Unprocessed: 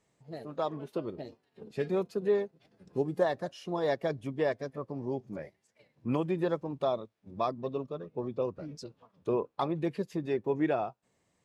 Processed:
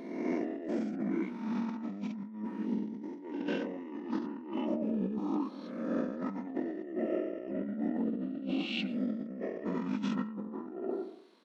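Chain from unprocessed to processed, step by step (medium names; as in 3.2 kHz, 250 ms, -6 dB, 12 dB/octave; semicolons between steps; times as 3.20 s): reverse spectral sustain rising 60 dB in 1.24 s; brick-wall FIR high-pass 350 Hz; pitch shift -11 st; on a send at -15 dB: reverberation RT60 0.70 s, pre-delay 92 ms; on the sum: compressor with a negative ratio -39 dBFS, ratio -1; trim +2.5 dB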